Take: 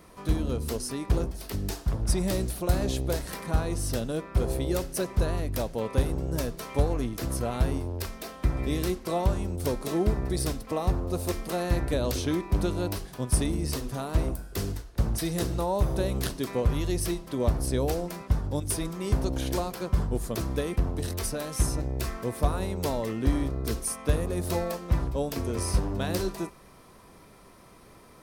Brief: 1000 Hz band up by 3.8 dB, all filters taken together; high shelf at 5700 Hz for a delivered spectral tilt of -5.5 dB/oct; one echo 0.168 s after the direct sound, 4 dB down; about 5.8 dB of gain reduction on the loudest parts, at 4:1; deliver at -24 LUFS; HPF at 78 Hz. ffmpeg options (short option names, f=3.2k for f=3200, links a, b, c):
-af "highpass=78,equalizer=f=1k:t=o:g=5,highshelf=f=5.7k:g=-3.5,acompressor=threshold=-28dB:ratio=4,aecho=1:1:168:0.631,volume=8dB"